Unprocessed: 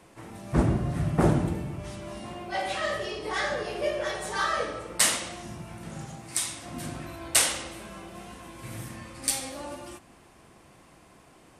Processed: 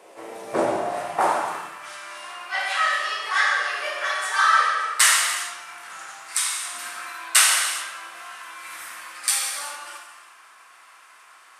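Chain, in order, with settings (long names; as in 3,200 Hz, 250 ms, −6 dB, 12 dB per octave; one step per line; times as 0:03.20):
reverb whose tail is shaped and stops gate 440 ms falling, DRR −0.5 dB
high-pass filter sweep 500 Hz → 1,300 Hz, 0:00.52–0:01.84
level +3 dB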